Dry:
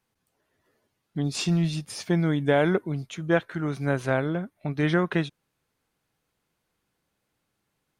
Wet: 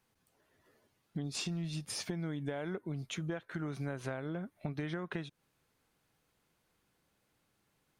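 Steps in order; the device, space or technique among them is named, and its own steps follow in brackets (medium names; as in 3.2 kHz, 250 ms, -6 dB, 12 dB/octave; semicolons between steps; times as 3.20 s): serial compression, peaks first (compression 10:1, threshold -30 dBFS, peak gain reduction 14 dB; compression 2:1, threshold -40 dBFS, peak gain reduction 7 dB); trim +1 dB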